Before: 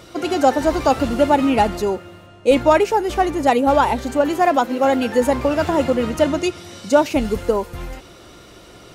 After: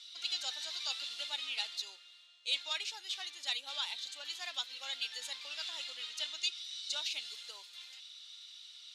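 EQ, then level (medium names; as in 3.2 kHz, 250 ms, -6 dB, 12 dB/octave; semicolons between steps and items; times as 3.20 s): ladder band-pass 4.1 kHz, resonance 65%; +4.0 dB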